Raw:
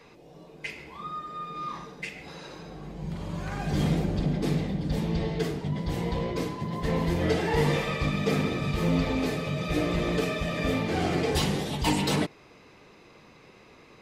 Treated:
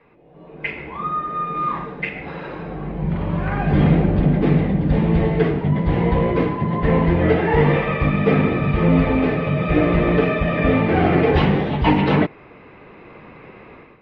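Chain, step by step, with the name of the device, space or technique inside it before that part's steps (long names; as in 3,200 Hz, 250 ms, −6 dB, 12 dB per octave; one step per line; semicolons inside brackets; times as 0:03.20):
action camera in a waterproof case (low-pass filter 2,500 Hz 24 dB per octave; automatic gain control gain up to 14.5 dB; level −2 dB; AAC 64 kbit/s 44,100 Hz)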